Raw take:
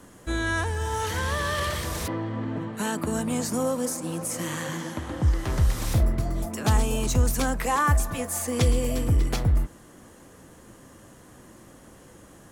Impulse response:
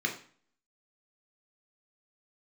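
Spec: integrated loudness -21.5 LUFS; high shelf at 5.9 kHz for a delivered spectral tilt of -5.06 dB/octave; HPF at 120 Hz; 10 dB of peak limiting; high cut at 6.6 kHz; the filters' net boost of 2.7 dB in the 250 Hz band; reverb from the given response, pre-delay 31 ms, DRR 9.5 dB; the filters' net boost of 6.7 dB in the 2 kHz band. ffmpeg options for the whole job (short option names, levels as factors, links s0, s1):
-filter_complex "[0:a]highpass=120,lowpass=6600,equalizer=f=250:t=o:g=3.5,equalizer=f=2000:t=o:g=9,highshelf=f=5900:g=-5.5,alimiter=limit=0.126:level=0:latency=1,asplit=2[s0][s1];[1:a]atrim=start_sample=2205,adelay=31[s2];[s1][s2]afir=irnorm=-1:irlink=0,volume=0.141[s3];[s0][s3]amix=inputs=2:normalize=0,volume=2"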